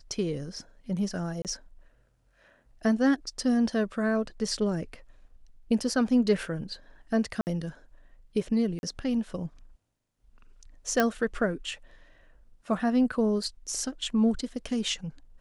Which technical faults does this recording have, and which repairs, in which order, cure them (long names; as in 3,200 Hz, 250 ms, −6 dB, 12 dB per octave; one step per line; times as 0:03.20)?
0:01.42–0:01.45: drop-out 28 ms
0:07.41–0:07.47: drop-out 59 ms
0:08.79–0:08.83: drop-out 41 ms
0:11.00: click −10 dBFS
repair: click removal
repair the gap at 0:01.42, 28 ms
repair the gap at 0:07.41, 59 ms
repair the gap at 0:08.79, 41 ms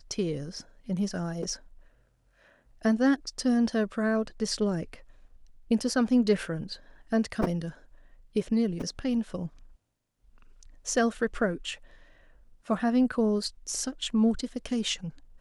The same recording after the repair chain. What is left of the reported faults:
0:11.00: click